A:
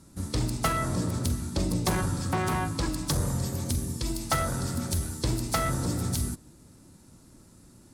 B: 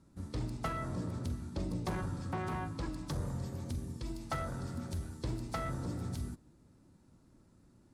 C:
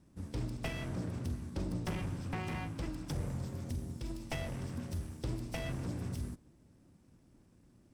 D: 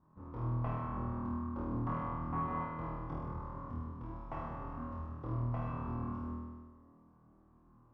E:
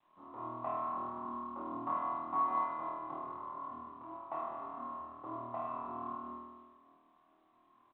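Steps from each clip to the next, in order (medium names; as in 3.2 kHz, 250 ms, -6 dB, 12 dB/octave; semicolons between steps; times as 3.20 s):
low-pass 2.2 kHz 6 dB/octave; trim -9 dB
comb filter that takes the minimum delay 0.36 ms
resonant low-pass 1.1 kHz, resonance Q 7.1; on a send: flutter echo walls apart 4.3 m, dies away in 1.4 s; on the sum: trim -8 dB
cabinet simulation 420–2600 Hz, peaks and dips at 470 Hz -9 dB, 680 Hz +5 dB, 1.1 kHz +4 dB, 1.6 kHz -9 dB, 2.2 kHz -4 dB; doubling 28 ms -5 dB; trim +1.5 dB; G.726 40 kbps 8 kHz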